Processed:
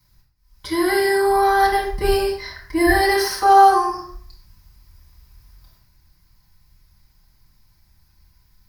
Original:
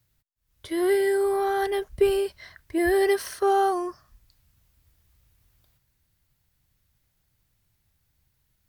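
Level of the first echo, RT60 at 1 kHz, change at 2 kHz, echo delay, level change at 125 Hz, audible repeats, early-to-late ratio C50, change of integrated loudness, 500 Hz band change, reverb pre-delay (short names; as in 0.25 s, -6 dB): none, 0.55 s, +10.5 dB, none, n/a, none, 5.5 dB, +7.0 dB, +2.5 dB, 4 ms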